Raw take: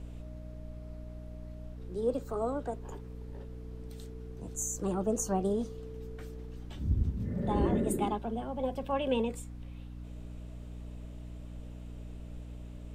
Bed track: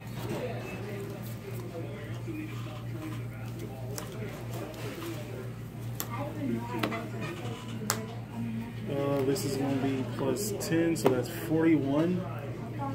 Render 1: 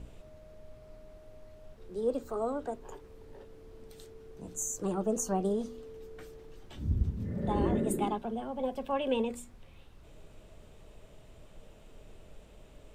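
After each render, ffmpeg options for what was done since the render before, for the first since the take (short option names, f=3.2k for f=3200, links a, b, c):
-af "bandreject=f=60:t=h:w=4,bandreject=f=120:t=h:w=4,bandreject=f=180:t=h:w=4,bandreject=f=240:t=h:w=4,bandreject=f=300:t=h:w=4"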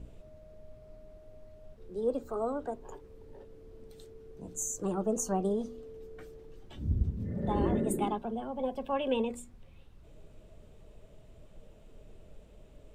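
-af "afftdn=nr=6:nf=-55"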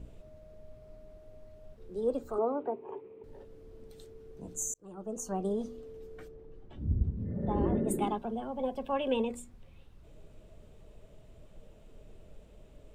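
-filter_complex "[0:a]asettb=1/sr,asplit=3[a][b][c];[a]atrim=end=2.384[d];[b]atrim=start=2.38:end=3.24,asetpts=PTS-STARTPTS,afade=t=in:d=0.004:c=qsin,afade=t=out:st=0.856:d=0.004:c=qsin,highpass=f=130:w=0.5412,highpass=f=130:w=1.3066,equalizer=f=160:t=q:w=4:g=-7,equalizer=f=390:t=q:w=4:g=10,equalizer=f=900:t=q:w=4:g=5,equalizer=f=1.6k:t=q:w=4:g=-8,equalizer=f=2.4k:t=q:w=4:g=7,lowpass=f=2.7k:w=0.5412,lowpass=f=2.7k:w=1.3066[e];[c]atrim=start=3.236[f];[d][e]acrossfade=d=0.004:c1=hsin:c2=qsin[g];[g][f]acrossfade=d=0.004:c1=qsin:c2=hsin,asplit=3[h][i][j];[h]afade=t=out:st=6.27:d=0.02[k];[i]lowpass=f=1.1k:p=1,afade=t=in:st=6.27:d=0.02,afade=t=out:st=7.87:d=0.02[l];[j]afade=t=in:st=7.87:d=0.02[m];[k][l][m]amix=inputs=3:normalize=0,asplit=2[n][o];[n]atrim=end=4.74,asetpts=PTS-STARTPTS,afade=t=out:st=4.736:d=0.004:c=hsin[p];[o]atrim=start=4.74,asetpts=PTS-STARTPTS,afade=t=in:d=0.94[q];[p][q]concat=n=2:v=0:a=1"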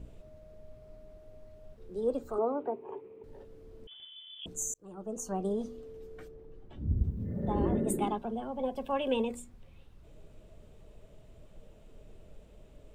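-filter_complex "[0:a]asettb=1/sr,asplit=3[a][b][c];[a]atrim=end=3.874[d];[b]atrim=start=3.87:end=4.46,asetpts=PTS-STARTPTS,afade=t=in:d=0.004:c=qsin,afade=t=out:st=0.586:d=0.004:c=qsin,lowpass=f=3k:t=q:w=0.5098,lowpass=f=3k:t=q:w=0.6013,lowpass=f=3k:t=q:w=0.9,lowpass=f=3k:t=q:w=2.563,afreqshift=-3500[e];[c]atrim=start=4.456[f];[d][e]acrossfade=d=0.004:c1=hsin:c2=qsin[g];[g][f]acrossfade=d=0.004:c1=qsin:c2=hsin,asettb=1/sr,asplit=3[h][i][j];[h]atrim=end=6.974[k];[i]atrim=start=6.97:end=7.91,asetpts=PTS-STARTPTS,afade=t=in:d=0.004:c=qsin,afade=t=out:st=0.936:d=0.004:c=qsin,aemphasis=mode=production:type=50kf[l];[j]atrim=start=7.906[m];[k][l]acrossfade=d=0.004:c1=hsin:c2=qsin[n];[n][m]acrossfade=d=0.004:c1=qsin:c2=hsin,asettb=1/sr,asplit=3[o][p][q];[o]atrim=end=8.764[r];[p]atrim=start=8.76:end=9.36,asetpts=PTS-STARTPTS,afade=t=in:d=0.004:c=qsin,afade=t=out:st=0.596:d=0.004:c=qsin,highshelf=f=6.5k:g=7[s];[q]atrim=start=9.356[t];[r][s]acrossfade=d=0.004:c1=hsin:c2=qsin[u];[u][t]acrossfade=d=0.004:c1=qsin:c2=hsin"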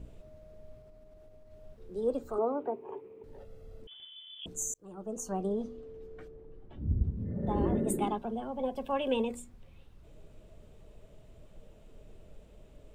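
-filter_complex "[0:a]asettb=1/sr,asplit=3[a][b][c];[a]atrim=end=0.814[d];[b]atrim=start=0.81:end=1.52,asetpts=PTS-STARTPTS,afade=t=in:d=0.004:c=qsin,afade=t=out:st=0.706:d=0.004:c=qsin,acompressor=threshold=-50dB:ratio=6:attack=3.2:release=140:knee=1:detection=peak[e];[c]atrim=start=1.516[f];[d][e]acrossfade=d=0.004:c1=hsin:c2=qsin[g];[g][f]acrossfade=d=0.004:c1=qsin:c2=hsin,asettb=1/sr,asplit=3[h][i][j];[h]atrim=end=3.384[k];[i]atrim=start=3.38:end=3.82,asetpts=PTS-STARTPTS,afade=t=in:d=0.004:c=qsin,afade=t=out:st=0.436:d=0.004:c=qsin,aecho=1:1:1.5:0.7,atrim=end_sample=19404[l];[j]atrim=start=3.816[m];[k][l]acrossfade=d=0.004:c1=hsin:c2=qsin[n];[n][m]acrossfade=d=0.004:c1=qsin:c2=hsin,asettb=1/sr,asplit=3[o][p][q];[o]atrim=end=5.454[r];[p]atrim=start=5.45:end=7.47,asetpts=PTS-STARTPTS,afade=t=in:d=0.004:c=qsin,afade=t=out:st=2.016:d=0.004:c=qsin,lowpass=f=2.8k:p=1[s];[q]atrim=start=7.466[t];[r][s]acrossfade=d=0.004:c1=hsin:c2=qsin[u];[u][t]acrossfade=d=0.004:c1=qsin:c2=hsin"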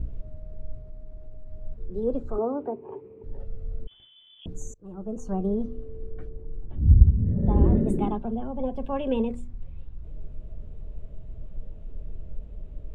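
-af "aemphasis=mode=reproduction:type=riaa"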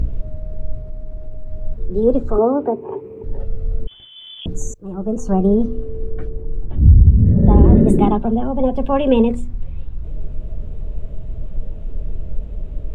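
-af "acompressor=mode=upward:threshold=-41dB:ratio=2.5,alimiter=level_in=12dB:limit=-1dB:release=50:level=0:latency=1"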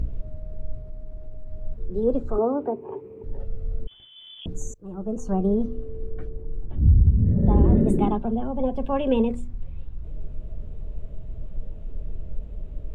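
-af "volume=-7.5dB"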